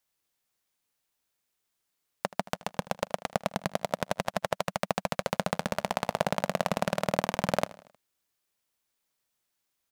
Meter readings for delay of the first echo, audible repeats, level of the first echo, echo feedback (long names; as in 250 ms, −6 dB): 78 ms, 3, −19.5 dB, 53%